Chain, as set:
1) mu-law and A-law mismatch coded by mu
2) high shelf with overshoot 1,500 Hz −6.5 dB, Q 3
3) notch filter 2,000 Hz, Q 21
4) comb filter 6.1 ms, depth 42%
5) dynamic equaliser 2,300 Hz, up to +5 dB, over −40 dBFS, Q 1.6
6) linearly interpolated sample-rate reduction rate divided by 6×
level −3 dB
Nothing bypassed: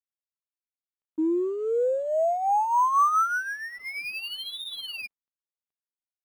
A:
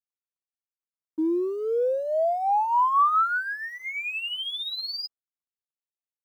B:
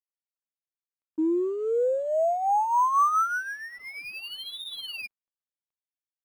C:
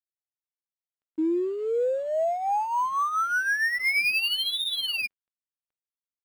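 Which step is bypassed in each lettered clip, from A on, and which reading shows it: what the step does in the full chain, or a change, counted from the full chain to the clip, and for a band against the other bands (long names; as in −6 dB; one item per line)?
6, 4 kHz band +4.0 dB
5, change in momentary loudness spread +2 LU
2, 4 kHz band +8.5 dB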